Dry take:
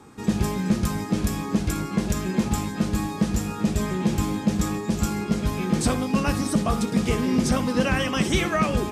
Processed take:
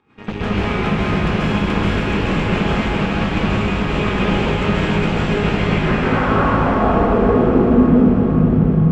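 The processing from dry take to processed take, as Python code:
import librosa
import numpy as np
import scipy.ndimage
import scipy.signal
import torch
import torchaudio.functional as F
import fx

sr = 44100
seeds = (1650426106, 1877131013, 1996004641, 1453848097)

p1 = fx.cheby_harmonics(x, sr, harmonics=(6,), levels_db=(-11,), full_scale_db=-11.0)
p2 = fx.volume_shaper(p1, sr, bpm=83, per_beat=1, depth_db=-13, release_ms=95.0, shape='slow start')
p3 = fx.filter_sweep_lowpass(p2, sr, from_hz=2700.0, to_hz=160.0, start_s=5.48, end_s=8.11, q=2.6)
p4 = p3 + fx.echo_diffused(p3, sr, ms=513, feedback_pct=60, wet_db=-6.5, dry=0)
p5 = fx.rev_plate(p4, sr, seeds[0], rt60_s=2.9, hf_ratio=0.9, predelay_ms=120, drr_db=-9.0)
y = p5 * 10.0 ** (-5.0 / 20.0)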